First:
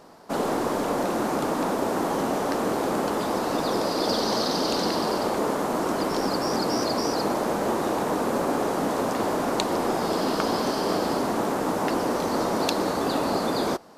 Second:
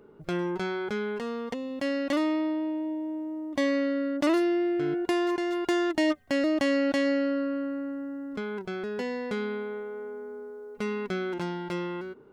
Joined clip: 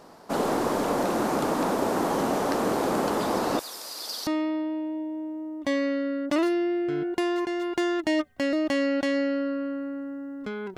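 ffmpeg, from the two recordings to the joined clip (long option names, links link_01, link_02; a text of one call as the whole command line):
ffmpeg -i cue0.wav -i cue1.wav -filter_complex "[0:a]asettb=1/sr,asplit=3[link_01][link_02][link_03];[link_01]atrim=end=3.594[link_04];[link_02]atrim=start=3.59:end=4.27,asetpts=PTS-STARTPTS,afade=type=in:duration=0.004:curve=qsin,afade=type=out:start_time=0.676:duration=0.004:curve=qsin,aderivative[link_05];[link_03]atrim=start=4.266[link_06];[link_04][link_05]acrossfade=duration=0.004:curve1=hsin:curve2=qsin[link_07];[link_07][link_06]acrossfade=duration=0.004:curve1=qsin:curve2=hsin,apad=whole_dur=10.77,atrim=end=10.77,atrim=end=4.272[link_08];[1:a]atrim=start=2.178:end=8.68[link_09];[link_08][link_09]acrossfade=duration=0.004:curve1=hsin:curve2=hsin" out.wav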